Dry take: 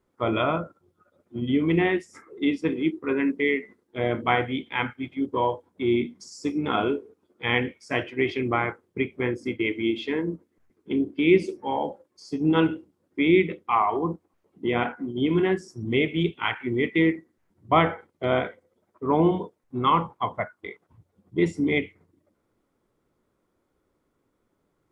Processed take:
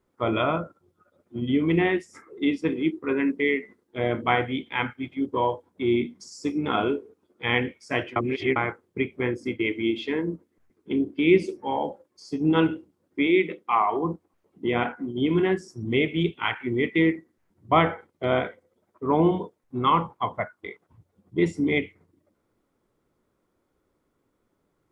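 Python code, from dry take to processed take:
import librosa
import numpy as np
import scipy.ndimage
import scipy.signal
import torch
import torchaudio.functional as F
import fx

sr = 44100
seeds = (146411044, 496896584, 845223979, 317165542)

y = fx.highpass(x, sr, hz=fx.line((13.26, 340.0), (14.04, 110.0)), slope=12, at=(13.26, 14.04), fade=0.02)
y = fx.edit(y, sr, fx.reverse_span(start_s=8.16, length_s=0.4), tone=tone)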